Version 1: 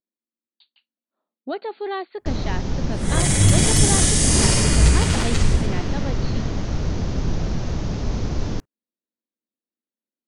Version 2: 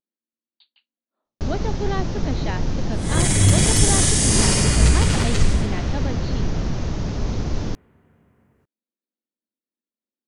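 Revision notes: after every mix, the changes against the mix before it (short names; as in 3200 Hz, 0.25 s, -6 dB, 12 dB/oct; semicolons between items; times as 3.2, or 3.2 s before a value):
first sound: entry -0.85 s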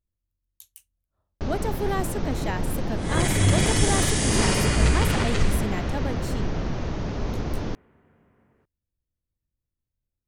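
speech: remove brick-wall FIR band-pass 200–4700 Hz; master: add tone controls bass -5 dB, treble -9 dB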